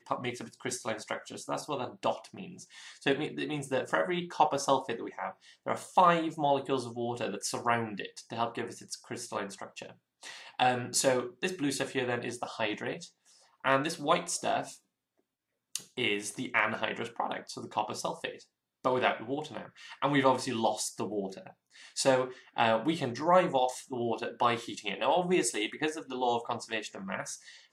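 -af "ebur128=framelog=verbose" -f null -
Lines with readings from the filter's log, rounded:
Integrated loudness:
  I:         -31.6 LUFS
  Threshold: -42.1 LUFS
Loudness range:
  LRA:         5.3 LU
  Threshold: -52.0 LUFS
  LRA low:   -35.0 LUFS
  LRA high:  -29.7 LUFS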